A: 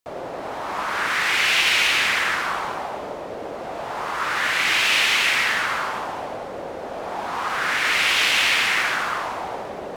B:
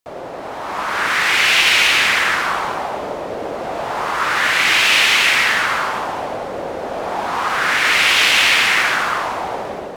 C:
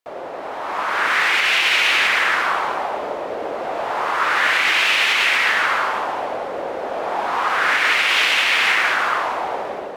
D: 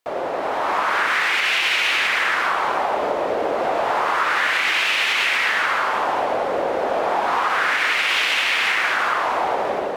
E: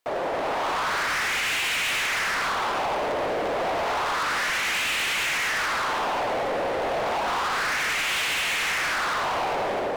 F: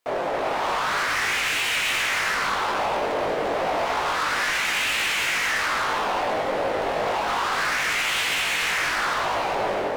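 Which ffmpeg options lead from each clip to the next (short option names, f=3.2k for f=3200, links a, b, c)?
-af "dynaudnorm=f=540:g=3:m=5.5dB,volume=1.5dB"
-af "bass=f=250:g=-11,treble=f=4k:g=-7,alimiter=limit=-7dB:level=0:latency=1:release=130"
-af "acompressor=threshold=-23dB:ratio=6,volume=6dB"
-af "volume=24dB,asoftclip=hard,volume=-24dB"
-af "flanger=delay=18.5:depth=2:speed=3,volume=4.5dB"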